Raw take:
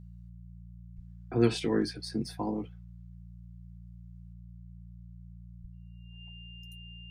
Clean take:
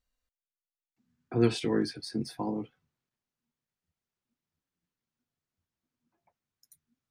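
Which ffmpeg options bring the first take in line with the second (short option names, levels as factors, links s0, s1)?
-filter_complex "[0:a]bandreject=f=58.1:t=h:w=4,bandreject=f=116.2:t=h:w=4,bandreject=f=174.3:t=h:w=4,bandreject=f=2800:w=30,asplit=3[s0][s1][s2];[s0]afade=t=out:st=0.95:d=0.02[s3];[s1]highpass=f=140:w=0.5412,highpass=f=140:w=1.3066,afade=t=in:st=0.95:d=0.02,afade=t=out:st=1.07:d=0.02[s4];[s2]afade=t=in:st=1.07:d=0.02[s5];[s3][s4][s5]amix=inputs=3:normalize=0,asplit=3[s6][s7][s8];[s6]afade=t=out:st=5.61:d=0.02[s9];[s7]highpass=f=140:w=0.5412,highpass=f=140:w=1.3066,afade=t=in:st=5.61:d=0.02,afade=t=out:st=5.73:d=0.02[s10];[s8]afade=t=in:st=5.73:d=0.02[s11];[s9][s10][s11]amix=inputs=3:normalize=0,asetnsamples=n=441:p=0,asendcmd='4.33 volume volume 4.5dB',volume=1"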